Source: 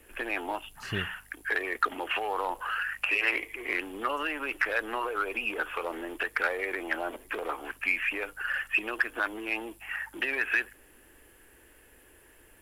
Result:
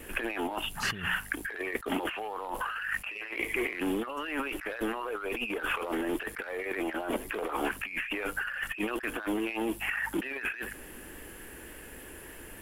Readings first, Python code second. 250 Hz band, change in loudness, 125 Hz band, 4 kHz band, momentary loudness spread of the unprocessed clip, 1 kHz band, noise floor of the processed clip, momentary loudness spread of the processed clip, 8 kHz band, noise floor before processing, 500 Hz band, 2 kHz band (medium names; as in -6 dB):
+6.5 dB, -2.5 dB, no reading, 0.0 dB, 8 LU, -3.0 dB, -47 dBFS, 14 LU, +6.5 dB, -58 dBFS, +1.0 dB, -4.0 dB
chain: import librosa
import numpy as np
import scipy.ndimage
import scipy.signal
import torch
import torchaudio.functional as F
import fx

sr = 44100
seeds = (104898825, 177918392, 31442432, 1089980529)

y = fx.peak_eq(x, sr, hz=190.0, db=7.0, octaves=0.88)
y = fx.over_compress(y, sr, threshold_db=-39.0, ratio=-1.0)
y = fx.vibrato(y, sr, rate_hz=3.6, depth_cents=27.0)
y = y * 10.0 ** (4.5 / 20.0)